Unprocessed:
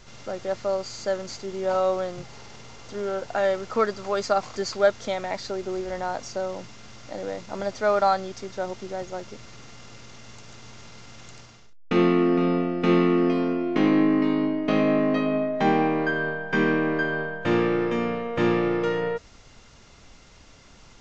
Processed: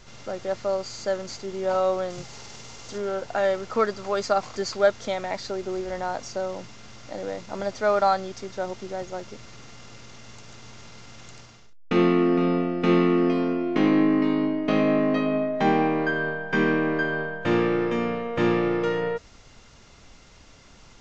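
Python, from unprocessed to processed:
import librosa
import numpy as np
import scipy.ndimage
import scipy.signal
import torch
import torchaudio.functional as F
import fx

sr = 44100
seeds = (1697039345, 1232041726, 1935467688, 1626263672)

y = fx.high_shelf(x, sr, hz=4900.0, db=11.0, at=(2.1, 2.98))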